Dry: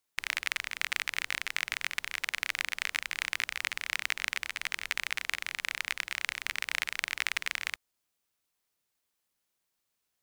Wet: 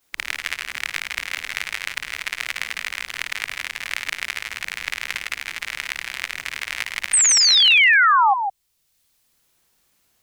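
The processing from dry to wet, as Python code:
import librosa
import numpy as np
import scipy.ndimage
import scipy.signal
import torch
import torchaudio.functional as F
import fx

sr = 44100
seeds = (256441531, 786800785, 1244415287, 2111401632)

p1 = fx.frame_reverse(x, sr, frame_ms=110.0)
p2 = fx.low_shelf(p1, sr, hz=250.0, db=5.0)
p3 = fx.level_steps(p2, sr, step_db=9)
p4 = p2 + F.gain(torch.from_numpy(p3), -1.0).numpy()
p5 = fx.spec_paint(p4, sr, seeds[0], shape='fall', start_s=7.13, length_s=1.21, low_hz=760.0, high_hz=8900.0, level_db=-14.0)
p6 = p5 + fx.echo_single(p5, sr, ms=159, db=-8.5, dry=0)
p7 = fx.band_squash(p6, sr, depth_pct=40)
y = F.gain(torch.from_numpy(p7), 3.5).numpy()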